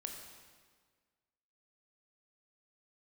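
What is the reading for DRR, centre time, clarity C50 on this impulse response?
2.5 dB, 49 ms, 4.0 dB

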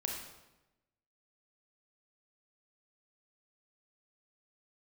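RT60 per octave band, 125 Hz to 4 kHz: 1.2, 1.1, 1.1, 0.95, 0.90, 0.80 s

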